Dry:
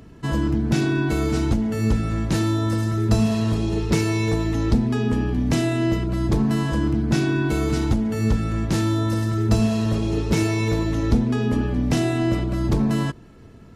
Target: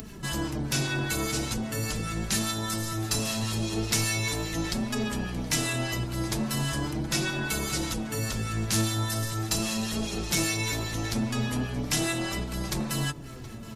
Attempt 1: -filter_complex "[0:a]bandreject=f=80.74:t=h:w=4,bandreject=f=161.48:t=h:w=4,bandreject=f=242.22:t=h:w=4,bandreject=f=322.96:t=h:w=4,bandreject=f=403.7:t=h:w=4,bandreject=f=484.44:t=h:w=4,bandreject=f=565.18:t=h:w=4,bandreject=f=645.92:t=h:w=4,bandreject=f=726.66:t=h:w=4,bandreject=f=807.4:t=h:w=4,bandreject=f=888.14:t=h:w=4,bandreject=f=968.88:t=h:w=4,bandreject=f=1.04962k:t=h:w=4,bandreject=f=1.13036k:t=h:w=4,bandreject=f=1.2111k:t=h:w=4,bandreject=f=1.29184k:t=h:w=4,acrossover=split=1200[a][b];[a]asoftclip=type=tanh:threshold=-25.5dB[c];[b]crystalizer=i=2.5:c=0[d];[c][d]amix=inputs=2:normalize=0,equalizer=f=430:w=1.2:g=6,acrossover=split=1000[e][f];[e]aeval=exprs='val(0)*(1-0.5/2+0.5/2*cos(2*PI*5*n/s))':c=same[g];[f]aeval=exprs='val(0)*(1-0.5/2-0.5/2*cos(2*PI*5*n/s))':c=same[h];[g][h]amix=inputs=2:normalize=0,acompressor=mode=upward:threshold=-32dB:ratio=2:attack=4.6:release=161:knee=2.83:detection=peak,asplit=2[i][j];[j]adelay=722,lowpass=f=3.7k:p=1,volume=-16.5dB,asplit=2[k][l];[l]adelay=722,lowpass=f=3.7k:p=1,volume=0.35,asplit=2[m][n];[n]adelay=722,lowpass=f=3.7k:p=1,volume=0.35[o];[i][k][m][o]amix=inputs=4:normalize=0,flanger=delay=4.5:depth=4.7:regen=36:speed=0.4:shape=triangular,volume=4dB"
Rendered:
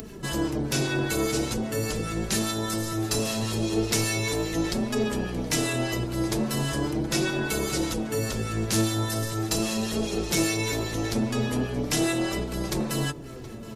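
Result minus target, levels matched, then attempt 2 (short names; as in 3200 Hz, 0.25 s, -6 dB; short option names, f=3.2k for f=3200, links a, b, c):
500 Hz band +5.0 dB
-filter_complex "[0:a]bandreject=f=80.74:t=h:w=4,bandreject=f=161.48:t=h:w=4,bandreject=f=242.22:t=h:w=4,bandreject=f=322.96:t=h:w=4,bandreject=f=403.7:t=h:w=4,bandreject=f=484.44:t=h:w=4,bandreject=f=565.18:t=h:w=4,bandreject=f=645.92:t=h:w=4,bandreject=f=726.66:t=h:w=4,bandreject=f=807.4:t=h:w=4,bandreject=f=888.14:t=h:w=4,bandreject=f=968.88:t=h:w=4,bandreject=f=1.04962k:t=h:w=4,bandreject=f=1.13036k:t=h:w=4,bandreject=f=1.2111k:t=h:w=4,bandreject=f=1.29184k:t=h:w=4,acrossover=split=1200[a][b];[a]asoftclip=type=tanh:threshold=-25.5dB[c];[b]crystalizer=i=2.5:c=0[d];[c][d]amix=inputs=2:normalize=0,equalizer=f=430:w=1.2:g=-2.5,acrossover=split=1000[e][f];[e]aeval=exprs='val(0)*(1-0.5/2+0.5/2*cos(2*PI*5*n/s))':c=same[g];[f]aeval=exprs='val(0)*(1-0.5/2-0.5/2*cos(2*PI*5*n/s))':c=same[h];[g][h]amix=inputs=2:normalize=0,acompressor=mode=upward:threshold=-32dB:ratio=2:attack=4.6:release=161:knee=2.83:detection=peak,asplit=2[i][j];[j]adelay=722,lowpass=f=3.7k:p=1,volume=-16.5dB,asplit=2[k][l];[l]adelay=722,lowpass=f=3.7k:p=1,volume=0.35,asplit=2[m][n];[n]adelay=722,lowpass=f=3.7k:p=1,volume=0.35[o];[i][k][m][o]amix=inputs=4:normalize=0,flanger=delay=4.5:depth=4.7:regen=36:speed=0.4:shape=triangular,volume=4dB"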